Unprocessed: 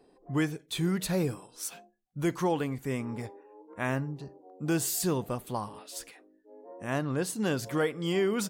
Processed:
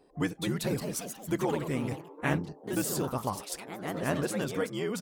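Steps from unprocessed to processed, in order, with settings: granular stretch 0.59×, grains 25 ms; vocal rider within 5 dB 0.5 s; echoes that change speed 0.24 s, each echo +2 st, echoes 3, each echo -6 dB

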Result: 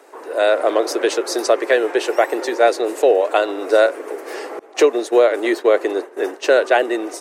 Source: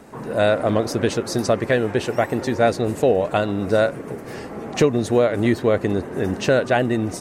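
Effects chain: steep high-pass 330 Hz 48 dB/oct; 4.59–6.86 expander -23 dBFS; AGC gain up to 7 dB

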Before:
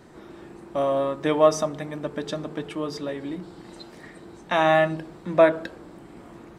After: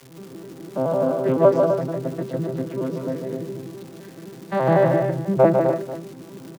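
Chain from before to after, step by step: arpeggiated vocoder major triad, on C3, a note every 85 ms; high shelf 2400 Hz -10 dB; crackle 260/s -38 dBFS; tapped delay 0.149/0.253/0.291/0.489 s -5/-7.5/-14/-18 dB; gain +3 dB

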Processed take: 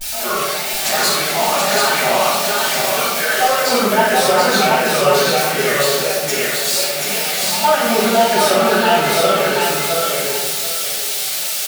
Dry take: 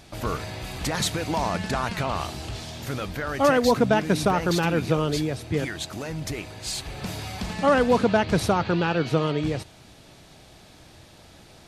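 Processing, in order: switching spikes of -24.5 dBFS; HPF 570 Hz 12 dB/oct; notch 1000 Hz, Q 7.7; comb 4.9 ms, depth 87%; compressor, threshold -22 dBFS, peak gain reduction 8.5 dB; flange 0.64 Hz, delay 3.2 ms, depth 6.8 ms, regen +47%; wow and flutter 140 cents; on a send: feedback echo 0.732 s, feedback 24%, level -3 dB; on the sum: shoebox room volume 400 m³, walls mixed, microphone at 7.6 m

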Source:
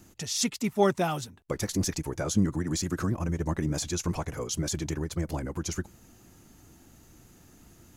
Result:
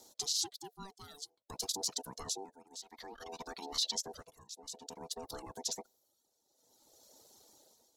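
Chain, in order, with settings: ring modulator 580 Hz; 2.82–3.95 graphic EQ 125/500/2000/4000/8000 Hz -11/-5/+7/+9/-7 dB; reverb removal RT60 0.94 s; tremolo 0.55 Hz, depth 87%; limiter -27.5 dBFS, peak gain reduction 9.5 dB; resonant high shelf 3100 Hz +9 dB, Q 3; notch 700 Hz, Q 12; gain -6 dB

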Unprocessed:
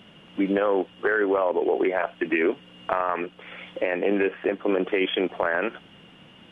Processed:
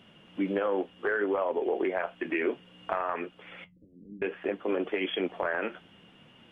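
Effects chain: 3.64–4.22 inverse Chebyshev low-pass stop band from 1100 Hz, stop band 80 dB; flange 0.63 Hz, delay 7.3 ms, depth 6.9 ms, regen -54%; gain -2 dB

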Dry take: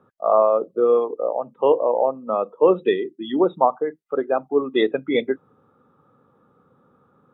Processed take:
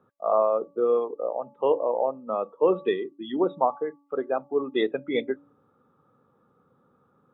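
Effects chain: de-hum 285.5 Hz, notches 4; gain -5.5 dB

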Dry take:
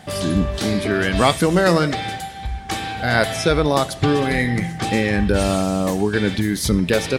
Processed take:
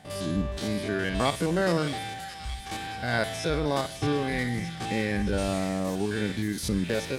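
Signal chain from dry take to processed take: stepped spectrum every 50 ms; notch 1300 Hz, Q 18; thin delay 0.62 s, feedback 66%, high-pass 2400 Hz, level -7 dB; gain -8.5 dB

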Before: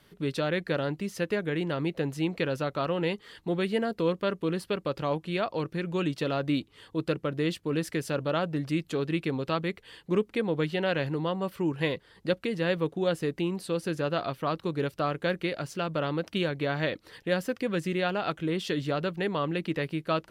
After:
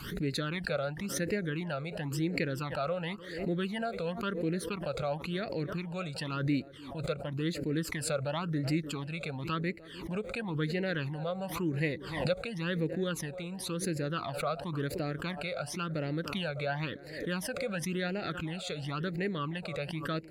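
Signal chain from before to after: narrowing echo 0.301 s, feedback 58%, band-pass 550 Hz, level -16 dB; phaser stages 12, 0.95 Hz, lowest notch 300–1100 Hz; backwards sustainer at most 64 dB/s; gain -2 dB

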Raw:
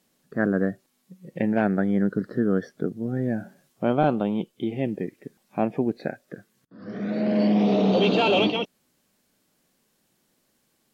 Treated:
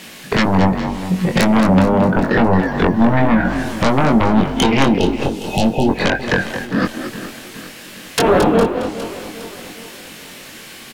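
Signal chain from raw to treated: 6.85–8.18 room tone; bell 2400 Hz +11 dB 1.7 oct; treble ducked by the level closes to 460 Hz, closed at -16.5 dBFS; compressor 5:1, threshold -34 dBFS, peak gain reduction 15.5 dB; 1.69–2.16 resonant low shelf 190 Hz +8.5 dB, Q 1.5; sine folder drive 18 dB, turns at -16 dBFS; frequency-shifting echo 0.222 s, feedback 31%, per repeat +46 Hz, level -9.5 dB; 4.97–5.89 spectral delete 920–2500 Hz; doubler 22 ms -4.5 dB; lo-fi delay 0.409 s, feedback 55%, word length 8-bit, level -14 dB; gain +5.5 dB

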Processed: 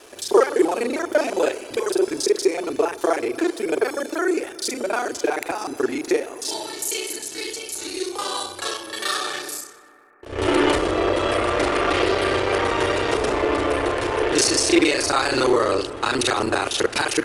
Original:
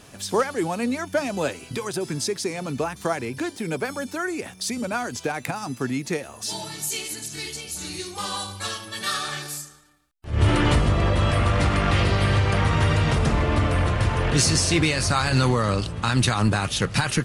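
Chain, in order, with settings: local time reversal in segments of 31 ms; resonant low shelf 250 Hz -13 dB, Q 3; on a send: analogue delay 0.122 s, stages 2048, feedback 82%, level -20.5 dB; on the sum: gain +2.5 dB

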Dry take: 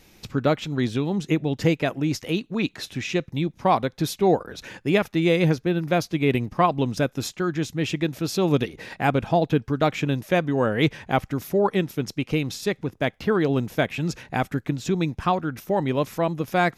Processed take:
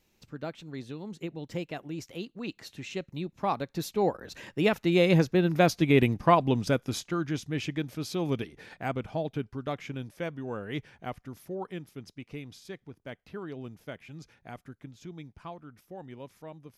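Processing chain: Doppler pass-by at 5.79, 21 m/s, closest 19 m

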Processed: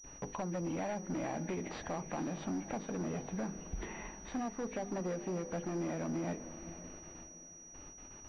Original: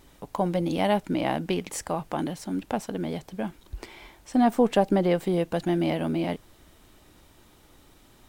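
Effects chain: nonlinear frequency compression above 1600 Hz 1.5:1; gate with hold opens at -45 dBFS; notches 50/100/150/200/250/300/350/400/450/500 Hz; compressor 12:1, threshold -34 dBFS, peak gain reduction 19 dB; hard clip -35.5 dBFS, distortion -11 dB; diffused feedback echo 0.485 s, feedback 45%, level -13 dB; pulse-width modulation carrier 5800 Hz; gain +2 dB

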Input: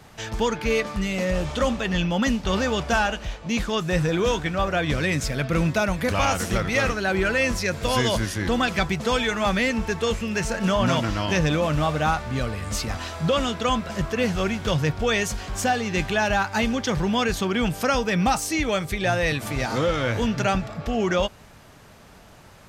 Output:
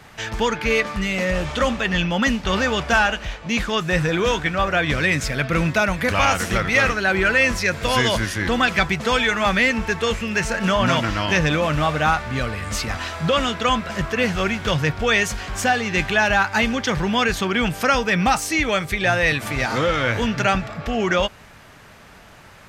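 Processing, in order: bell 1900 Hz +6.5 dB 1.7 oct; gain +1 dB

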